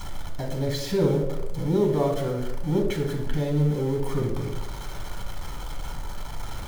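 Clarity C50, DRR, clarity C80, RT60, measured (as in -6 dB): 6.0 dB, 1.0 dB, 9.0 dB, 0.95 s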